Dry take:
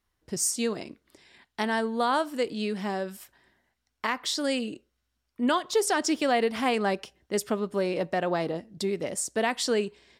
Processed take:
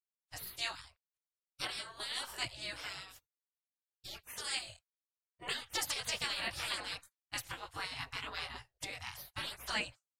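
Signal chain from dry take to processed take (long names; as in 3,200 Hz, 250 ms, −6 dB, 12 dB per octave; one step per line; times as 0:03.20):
dynamic equaliser 350 Hz, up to +5 dB, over −36 dBFS, Q 0.9
multi-voice chorus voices 2, 0.77 Hz, delay 20 ms, depth 3.8 ms
gate on every frequency bin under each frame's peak −25 dB weak
low shelf with overshoot 160 Hz +8.5 dB, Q 1.5
downward expander −53 dBFS
level +5 dB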